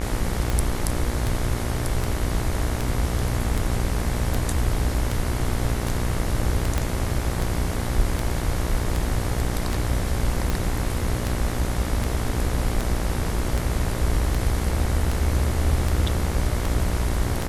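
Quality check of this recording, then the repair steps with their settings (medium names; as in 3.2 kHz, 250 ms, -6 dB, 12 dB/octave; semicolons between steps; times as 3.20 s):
buzz 60 Hz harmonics 38 -28 dBFS
tick 78 rpm
6.78 s: pop -9 dBFS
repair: de-click; de-hum 60 Hz, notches 38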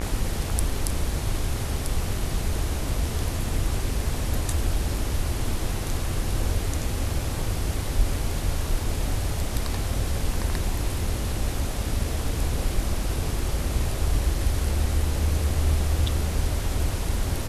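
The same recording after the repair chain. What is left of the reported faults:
6.78 s: pop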